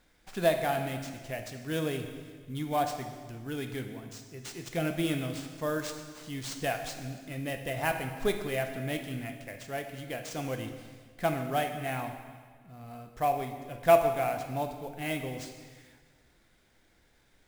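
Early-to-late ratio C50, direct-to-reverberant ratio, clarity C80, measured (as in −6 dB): 7.5 dB, 5.0 dB, 8.5 dB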